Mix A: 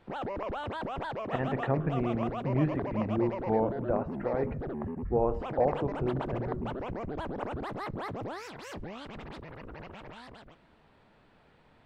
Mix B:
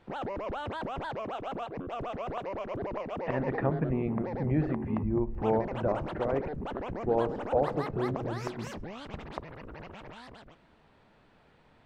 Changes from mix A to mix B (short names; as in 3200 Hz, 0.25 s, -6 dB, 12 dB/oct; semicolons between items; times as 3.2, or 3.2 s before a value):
speech: entry +1.95 s; master: add bell 6200 Hz +3 dB 0.4 oct